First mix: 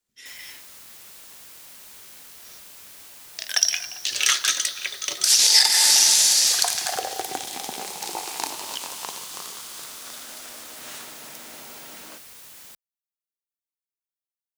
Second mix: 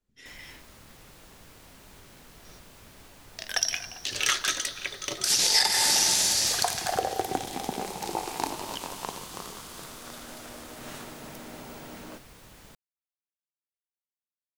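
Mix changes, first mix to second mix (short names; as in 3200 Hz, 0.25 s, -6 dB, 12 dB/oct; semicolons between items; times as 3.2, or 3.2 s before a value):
second sound: add high shelf 11000 Hz +10.5 dB; master: add tilt -3.5 dB/oct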